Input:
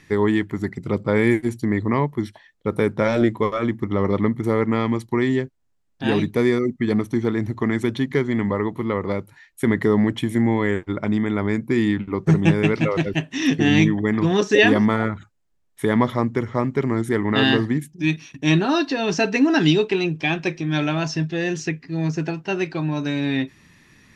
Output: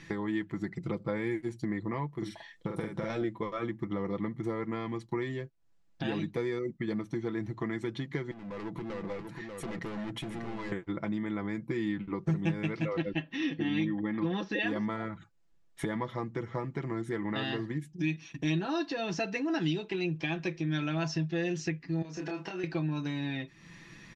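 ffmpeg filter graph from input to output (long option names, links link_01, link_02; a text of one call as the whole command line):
ffmpeg -i in.wav -filter_complex "[0:a]asettb=1/sr,asplit=3[link_01][link_02][link_03];[link_01]atrim=end=2.154[link_04];[link_02]atrim=start=2.15:end=3.1,asetpts=PTS-STARTPTS,afade=type=in:duration=0.004:curve=qsin,afade=type=out:start_time=0.946:duration=0.004:curve=qsin,highshelf=frequency=6300:gain=8.5,acompressor=threshold=-22dB:ratio=6:attack=3.2:release=140:knee=1:detection=peak,asplit=2[link_05][link_06];[link_06]adelay=46,volume=-3dB[link_07];[link_05][link_07]amix=inputs=2:normalize=0,atrim=end_sample=41895[link_08];[link_03]atrim=start=3.096[link_09];[link_04][link_08]acrossfade=duration=0.004:curve1=hsin:curve2=qsin[link_10];[link_10][link_09]acrossfade=duration=0.004:curve1=qsin:curve2=hsin,asettb=1/sr,asplit=3[link_11][link_12][link_13];[link_11]atrim=end=8.314[link_14];[link_12]atrim=start=8.31:end=10.72,asetpts=PTS-STARTPTS,afade=type=in:duration=0.004:curve=qsin,afade=type=out:start_time=2.406:duration=0.004:curve=qsin,asoftclip=type=hard:threshold=-23dB,acompressor=threshold=-36dB:ratio=10:attack=3.2:release=140:knee=1:detection=peak,aecho=1:1:591:0.501,atrim=end_sample=106281[link_15];[link_13]atrim=start=10.716[link_16];[link_14][link_15]acrossfade=duration=0.004:curve1=hsin:curve2=qsin[link_17];[link_17][link_16]acrossfade=duration=0.004:curve1=qsin:curve2=hsin,asettb=1/sr,asplit=3[link_18][link_19][link_20];[link_18]atrim=end=12.964[link_21];[link_19]atrim=start=12.96:end=14.66,asetpts=PTS-STARTPTS,afade=type=in:duration=0.004:curve=qsin,afade=type=out:start_time=1.696:duration=0.004:curve=qsin,lowpass=frequency=4400:width=0.5412,lowpass=frequency=4400:width=1.3066,aecho=1:1:3.7:0.42,atrim=end_sample=74970[link_22];[link_20]atrim=start=14.656[link_23];[link_21][link_22]acrossfade=duration=0.004:curve1=hsin:curve2=qsin[link_24];[link_24][link_23]acrossfade=duration=0.004:curve1=qsin:curve2=hsin,asettb=1/sr,asplit=3[link_25][link_26][link_27];[link_25]atrim=end=22.024[link_28];[link_26]atrim=start=22.02:end=22.64,asetpts=PTS-STARTPTS,afade=type=in:duration=0.004:curve=qsin,afade=type=out:start_time=0.616:duration=0.004:curve=qsin,highpass=270,acompressor=threshold=-33dB:ratio=10:attack=3.2:release=140:knee=1:detection=peak,asplit=2[link_29][link_30];[link_30]adelay=27,volume=-3.5dB[link_31];[link_29][link_31]amix=inputs=2:normalize=0,atrim=end_sample=27342[link_32];[link_27]atrim=start=22.636[link_33];[link_28][link_32]acrossfade=duration=0.004:curve1=hsin:curve2=qsin[link_34];[link_34][link_33]acrossfade=duration=0.004:curve1=qsin:curve2=hsin,acompressor=threshold=-36dB:ratio=3,lowpass=7000,aecho=1:1:6:0.59" out.wav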